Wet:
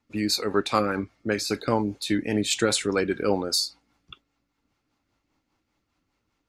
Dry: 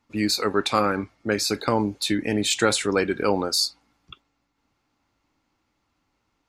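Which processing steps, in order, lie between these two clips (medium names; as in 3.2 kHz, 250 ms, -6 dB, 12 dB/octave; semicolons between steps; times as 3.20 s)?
rotary cabinet horn 5 Hz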